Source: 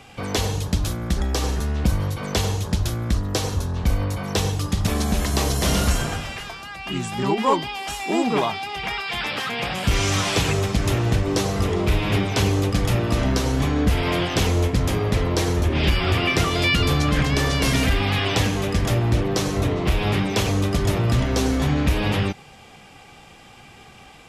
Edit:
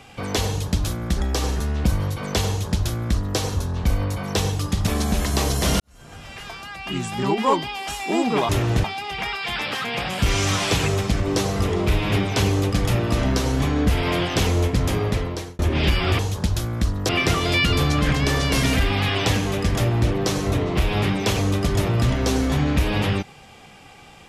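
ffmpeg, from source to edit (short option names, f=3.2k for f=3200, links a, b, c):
-filter_complex "[0:a]asplit=8[a][b][c][d][e][f][g][h];[a]atrim=end=5.8,asetpts=PTS-STARTPTS,afade=t=out:st=5.796:d=0.004:c=hsin[i];[b]atrim=start=5.8:end=8.492,asetpts=PTS-STARTPTS,afade=t=in:d=0.75:c=qua[j];[c]atrim=start=10.848:end=11.202[k];[d]atrim=start=8.488:end=10.852[l];[e]atrim=start=11.198:end=15.59,asetpts=PTS-STARTPTS,afade=t=out:st=3.842:d=0.55[m];[f]atrim=start=15.59:end=16.192,asetpts=PTS-STARTPTS,afade=t=in:d=0.004:c=hsin[n];[g]atrim=start=2.478:end=3.382[o];[h]atrim=start=16.188[p];[i][j]concat=n=2:v=0:a=1[q];[q][k]acrossfade=d=0.004:c1=hsin:c2=hsin[r];[r][l]acrossfade=d=0.004:c1=hsin:c2=hsin[s];[m][n]concat=n=2:v=0:a=1[t];[s][t]acrossfade=d=0.004:c1=hsin:c2=hsin[u];[u][o]acrossfade=d=0.004:c1=hsin:c2=hsin[v];[v][p]acrossfade=d=0.004:c1=hsin:c2=hsin"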